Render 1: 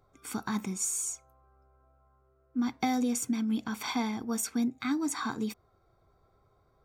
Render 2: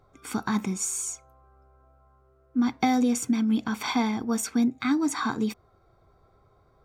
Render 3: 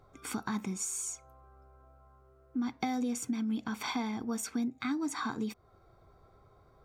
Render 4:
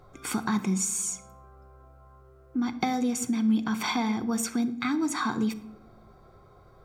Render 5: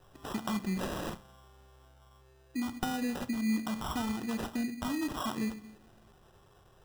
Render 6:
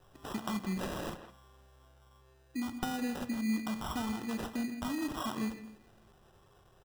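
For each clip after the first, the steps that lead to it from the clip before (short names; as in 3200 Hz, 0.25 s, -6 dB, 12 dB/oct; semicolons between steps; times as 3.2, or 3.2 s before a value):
high shelf 7200 Hz -8 dB; gain +6 dB
compressor 2:1, threshold -38 dBFS, peak gain reduction 11 dB
shoebox room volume 2500 m³, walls furnished, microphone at 0.93 m; gain +6.5 dB
sample-and-hold 20×; gain -6.5 dB
speakerphone echo 0.16 s, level -10 dB; gain -2 dB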